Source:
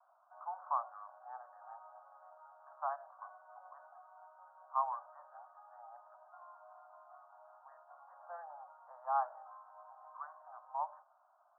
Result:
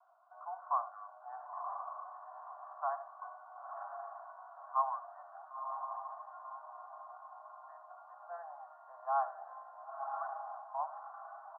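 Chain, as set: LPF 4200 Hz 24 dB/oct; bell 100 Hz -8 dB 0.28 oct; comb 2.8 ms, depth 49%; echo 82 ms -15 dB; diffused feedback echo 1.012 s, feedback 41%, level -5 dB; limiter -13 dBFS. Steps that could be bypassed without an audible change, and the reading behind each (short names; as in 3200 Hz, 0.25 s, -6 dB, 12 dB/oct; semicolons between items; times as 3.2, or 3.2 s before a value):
LPF 4200 Hz: input band ends at 1600 Hz; bell 100 Hz: input band starts at 510 Hz; limiter -13 dBFS: input peak -20.5 dBFS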